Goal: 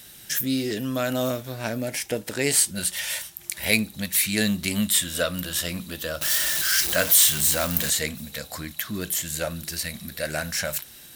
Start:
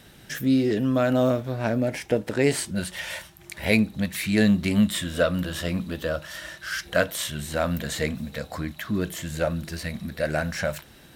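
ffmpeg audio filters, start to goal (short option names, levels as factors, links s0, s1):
-filter_complex "[0:a]asettb=1/sr,asplit=3[s0][s1][s2];[s0]atrim=end=6.214[s3];[s1]atrim=start=6.21:end=7.9,asetpts=PTS-STARTPTS,afade=t=in:d=0.004:c=qsin,afade=t=out:st=1.686:d=0.004:c=qsin,aeval=exprs='val(0)+0.5*0.0422*sgn(val(0))':c=same[s4];[s2]atrim=start=7.896[s5];[s3][s4]acrossfade=d=0.004:c1=hsin:c2=qsin[s6];[s6][s5]acrossfade=d=0.004:c1=qsin:c2=hsin,crystalizer=i=6:c=0,volume=0.531"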